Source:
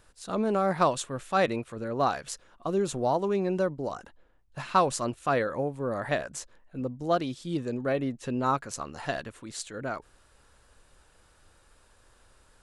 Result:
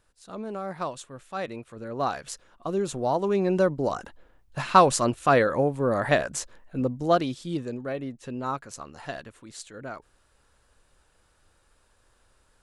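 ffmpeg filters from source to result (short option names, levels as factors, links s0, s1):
-af "volume=2.11,afade=t=in:st=1.45:d=0.8:silence=0.398107,afade=t=in:st=3.03:d=0.81:silence=0.473151,afade=t=out:st=6.81:d=1.06:silence=0.298538"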